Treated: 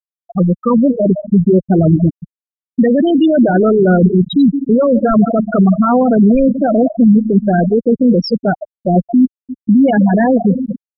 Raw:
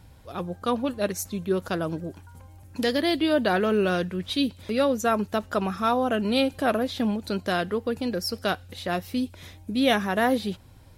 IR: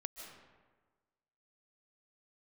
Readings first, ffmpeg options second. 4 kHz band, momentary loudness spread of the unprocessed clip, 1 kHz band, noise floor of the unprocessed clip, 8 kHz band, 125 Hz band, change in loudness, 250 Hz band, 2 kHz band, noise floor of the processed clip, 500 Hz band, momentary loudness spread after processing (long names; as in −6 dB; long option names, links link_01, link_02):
−2.0 dB, 9 LU, +8.5 dB, −50 dBFS, below −20 dB, +19.5 dB, +14.0 dB, +17.0 dB, +3.5 dB, below −85 dBFS, +12.0 dB, 6 LU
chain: -filter_complex "[0:a]asplit=2[link_01][link_02];[1:a]atrim=start_sample=2205,lowshelf=frequency=170:gain=4[link_03];[link_02][link_03]afir=irnorm=-1:irlink=0,volume=0dB[link_04];[link_01][link_04]amix=inputs=2:normalize=0,apsyclip=20.5dB,afftfilt=real='re*gte(hypot(re,im),2.24)':imag='im*gte(hypot(re,im),2.24)':win_size=1024:overlap=0.75,aemphasis=mode=reproduction:type=bsi,volume=-8dB"